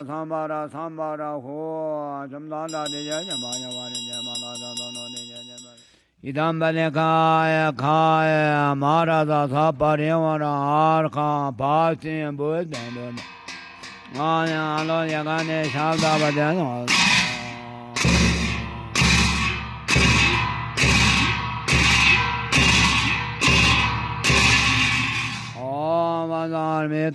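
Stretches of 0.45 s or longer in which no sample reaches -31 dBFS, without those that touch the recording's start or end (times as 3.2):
5.61–6.24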